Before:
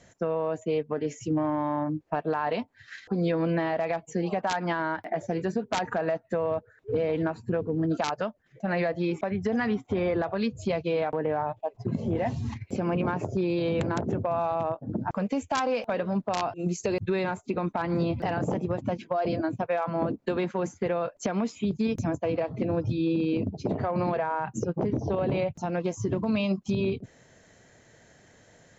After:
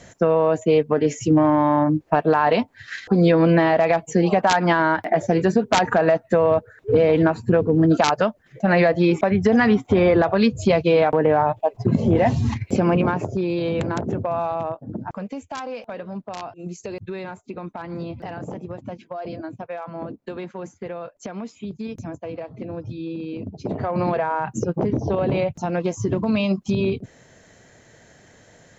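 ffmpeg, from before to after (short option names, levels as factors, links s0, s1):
-af "volume=10.6,afade=t=out:st=12.74:d=0.58:silence=0.446684,afade=t=out:st=14.38:d=1.02:silence=0.398107,afade=t=in:st=23.37:d=0.71:silence=0.316228"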